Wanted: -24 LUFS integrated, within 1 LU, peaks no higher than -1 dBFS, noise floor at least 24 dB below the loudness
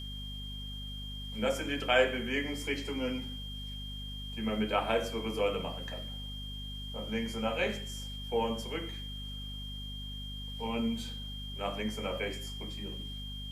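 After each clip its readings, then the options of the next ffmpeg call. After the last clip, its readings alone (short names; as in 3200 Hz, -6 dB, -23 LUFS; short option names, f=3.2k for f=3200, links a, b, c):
hum 50 Hz; harmonics up to 250 Hz; hum level -40 dBFS; steady tone 3200 Hz; tone level -43 dBFS; loudness -35.0 LUFS; peak -12.0 dBFS; loudness target -24.0 LUFS
-> -af "bandreject=f=50:t=h:w=6,bandreject=f=100:t=h:w=6,bandreject=f=150:t=h:w=6,bandreject=f=200:t=h:w=6,bandreject=f=250:t=h:w=6"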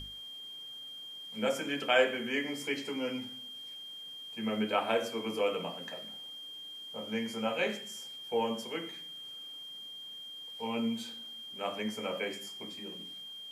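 hum none; steady tone 3200 Hz; tone level -43 dBFS
-> -af "bandreject=f=3.2k:w=30"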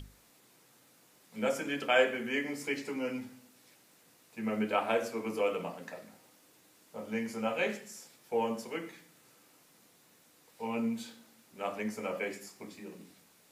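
steady tone none; loudness -34.0 LUFS; peak -13.0 dBFS; loudness target -24.0 LUFS
-> -af "volume=10dB"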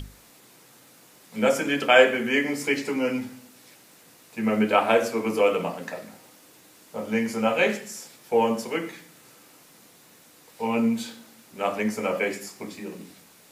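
loudness -24.0 LUFS; peak -3.0 dBFS; noise floor -54 dBFS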